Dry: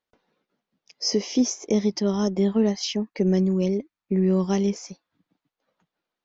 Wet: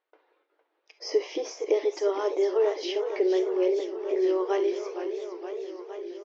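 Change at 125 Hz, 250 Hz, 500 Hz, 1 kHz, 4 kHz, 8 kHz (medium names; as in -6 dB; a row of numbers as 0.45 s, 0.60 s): under -40 dB, -10.0 dB, +2.5 dB, +2.0 dB, -8.0 dB, no reading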